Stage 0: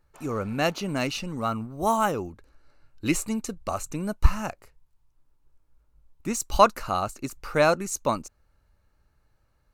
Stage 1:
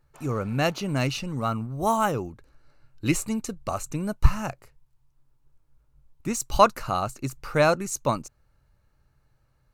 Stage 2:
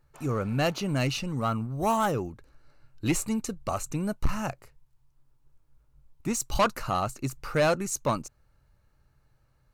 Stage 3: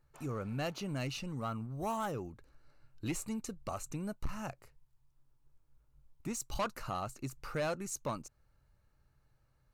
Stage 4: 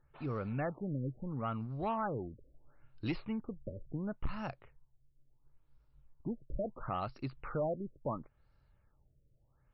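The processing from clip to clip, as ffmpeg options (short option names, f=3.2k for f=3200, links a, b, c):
-af "equalizer=f=130:t=o:w=0.36:g=10"
-af "asoftclip=type=tanh:threshold=-17dB"
-af "acompressor=threshold=-37dB:ratio=1.5,volume=-5.5dB"
-af "afftfilt=real='re*lt(b*sr/1024,590*pow(5700/590,0.5+0.5*sin(2*PI*0.73*pts/sr)))':imag='im*lt(b*sr/1024,590*pow(5700/590,0.5+0.5*sin(2*PI*0.73*pts/sr)))':win_size=1024:overlap=0.75,volume=1dB"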